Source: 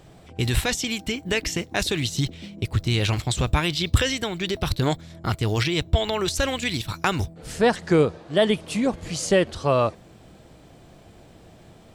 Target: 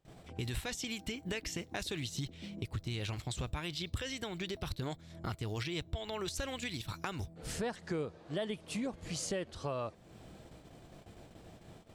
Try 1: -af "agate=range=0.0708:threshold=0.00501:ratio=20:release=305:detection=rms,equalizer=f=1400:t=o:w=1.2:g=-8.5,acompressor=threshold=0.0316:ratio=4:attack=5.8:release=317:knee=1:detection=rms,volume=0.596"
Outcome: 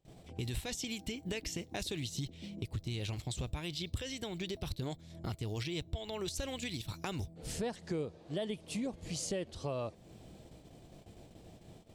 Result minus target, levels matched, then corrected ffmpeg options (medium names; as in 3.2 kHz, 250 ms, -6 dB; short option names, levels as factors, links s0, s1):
1 kHz band -2.5 dB
-af "agate=range=0.0708:threshold=0.00501:ratio=20:release=305:detection=rms,acompressor=threshold=0.0316:ratio=4:attack=5.8:release=317:knee=1:detection=rms,volume=0.596"